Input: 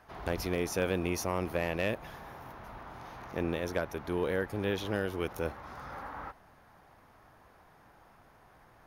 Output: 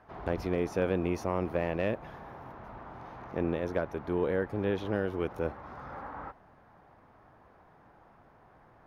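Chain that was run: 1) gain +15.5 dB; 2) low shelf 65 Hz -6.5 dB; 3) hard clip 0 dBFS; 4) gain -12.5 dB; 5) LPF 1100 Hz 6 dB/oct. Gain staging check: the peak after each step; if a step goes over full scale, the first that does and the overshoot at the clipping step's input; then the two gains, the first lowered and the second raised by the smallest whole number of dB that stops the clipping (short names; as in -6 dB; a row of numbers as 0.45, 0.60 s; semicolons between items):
-4.0, -3.0, -3.0, -15.5, -17.0 dBFS; no overload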